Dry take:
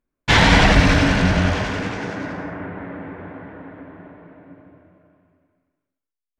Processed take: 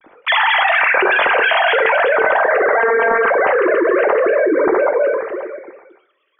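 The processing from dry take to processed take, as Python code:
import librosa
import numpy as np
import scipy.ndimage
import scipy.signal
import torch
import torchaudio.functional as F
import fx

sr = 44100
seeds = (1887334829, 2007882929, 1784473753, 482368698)

y = fx.sine_speech(x, sr)
y = fx.robotise(y, sr, hz=228.0, at=(2.76, 3.26))
y = fx.rev_double_slope(y, sr, seeds[0], early_s=0.43, late_s=1.8, knee_db=-25, drr_db=7.5)
y = fx.env_flatten(y, sr, amount_pct=100)
y = y * 10.0 ** (-6.0 / 20.0)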